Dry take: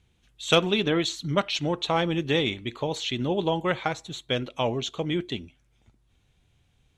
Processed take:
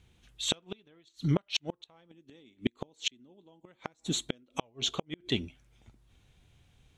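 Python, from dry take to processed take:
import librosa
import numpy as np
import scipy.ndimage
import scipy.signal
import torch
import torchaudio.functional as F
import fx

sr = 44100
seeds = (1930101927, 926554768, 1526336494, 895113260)

y = fx.graphic_eq(x, sr, hz=(125, 250, 8000), db=(-4, 11, 9), at=(2.11, 4.6))
y = fx.gate_flip(y, sr, shuts_db=-17.0, range_db=-39)
y = F.gain(torch.from_numpy(y), 2.5).numpy()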